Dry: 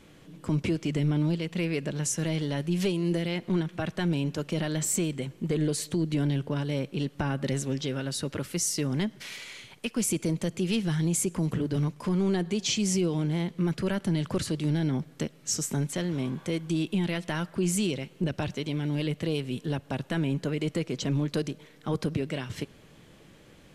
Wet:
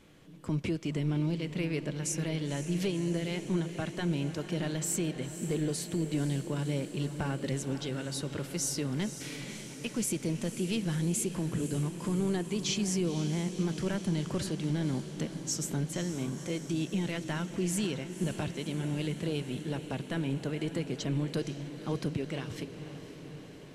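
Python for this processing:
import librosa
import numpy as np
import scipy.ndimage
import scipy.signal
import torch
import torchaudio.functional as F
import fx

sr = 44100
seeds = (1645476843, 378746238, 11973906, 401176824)

y = fx.echo_diffused(x, sr, ms=520, feedback_pct=71, wet_db=-11.0)
y = F.gain(torch.from_numpy(y), -4.5).numpy()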